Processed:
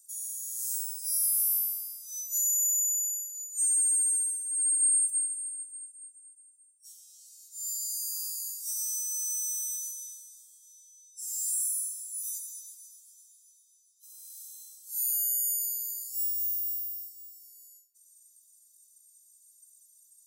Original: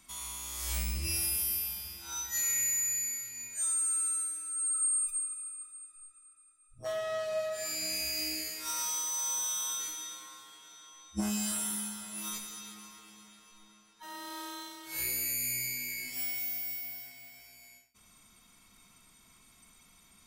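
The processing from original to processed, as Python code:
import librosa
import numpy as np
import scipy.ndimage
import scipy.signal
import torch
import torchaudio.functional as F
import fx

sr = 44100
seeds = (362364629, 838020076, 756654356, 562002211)

y = scipy.signal.sosfilt(scipy.signal.cheby2(4, 60, 2100.0, 'highpass', fs=sr, output='sos'), x)
y = F.gain(torch.from_numpy(y), 5.5).numpy()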